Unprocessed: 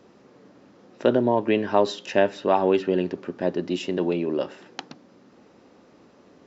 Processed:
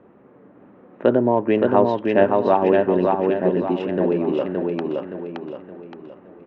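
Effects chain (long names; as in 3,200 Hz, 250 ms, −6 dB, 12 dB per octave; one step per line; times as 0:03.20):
adaptive Wiener filter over 9 samples
low-pass filter 2,100 Hz 12 dB per octave
repeating echo 570 ms, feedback 42%, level −3 dB
level +3 dB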